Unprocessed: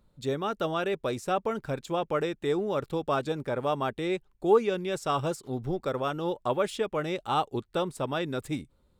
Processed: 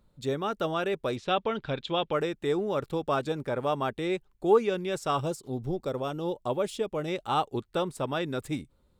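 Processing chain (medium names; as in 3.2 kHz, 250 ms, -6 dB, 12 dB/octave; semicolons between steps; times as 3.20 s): 1.16–2.13 s: resonant low-pass 3.5 kHz, resonance Q 3.6; 5.21–7.08 s: peaking EQ 1.6 kHz -8 dB 1.5 oct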